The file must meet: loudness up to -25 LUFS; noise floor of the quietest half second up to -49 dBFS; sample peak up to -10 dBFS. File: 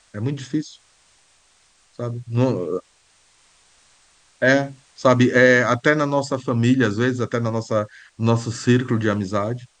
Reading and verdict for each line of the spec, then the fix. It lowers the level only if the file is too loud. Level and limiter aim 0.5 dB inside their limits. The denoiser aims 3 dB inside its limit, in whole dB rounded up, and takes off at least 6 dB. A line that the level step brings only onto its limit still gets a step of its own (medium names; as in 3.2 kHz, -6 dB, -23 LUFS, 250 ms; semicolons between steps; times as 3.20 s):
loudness -20.0 LUFS: fail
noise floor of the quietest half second -58 dBFS: pass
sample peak -2.0 dBFS: fail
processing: trim -5.5 dB; peak limiter -10.5 dBFS